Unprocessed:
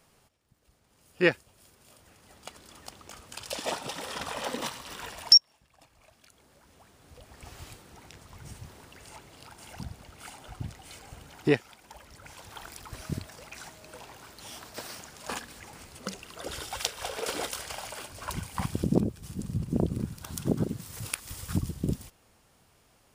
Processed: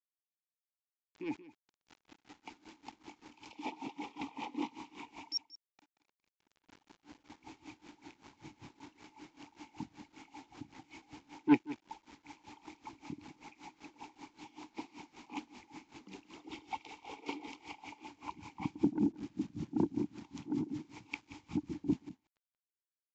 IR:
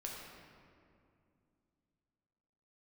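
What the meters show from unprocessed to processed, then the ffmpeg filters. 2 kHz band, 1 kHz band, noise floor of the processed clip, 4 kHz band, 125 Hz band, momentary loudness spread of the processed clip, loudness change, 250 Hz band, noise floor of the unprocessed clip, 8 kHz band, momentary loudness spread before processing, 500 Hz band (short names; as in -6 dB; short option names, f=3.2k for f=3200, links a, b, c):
-12.5 dB, -5.5 dB, under -85 dBFS, -20.5 dB, -14.0 dB, 21 LU, -10.0 dB, -2.5 dB, -65 dBFS, under -20 dB, 20 LU, -12.5 dB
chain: -filter_complex "[0:a]acrossover=split=180|1100|1900[a][b][c][d];[c]acompressor=threshold=-59dB:ratio=6[e];[a][b][e][d]amix=inputs=4:normalize=0,asplit=3[f][g][h];[f]bandpass=f=300:t=q:w=8,volume=0dB[i];[g]bandpass=f=870:t=q:w=8,volume=-6dB[j];[h]bandpass=f=2.24k:t=q:w=8,volume=-9dB[k];[i][j][k]amix=inputs=3:normalize=0,acrusher=bits=10:mix=0:aa=0.000001,asoftclip=type=tanh:threshold=-29.5dB,aecho=1:1:180:0.178,aresample=16000,aresample=44100,aeval=exprs='val(0)*pow(10,-20*(0.5-0.5*cos(2*PI*5.2*n/s))/20)':c=same,volume=13dB"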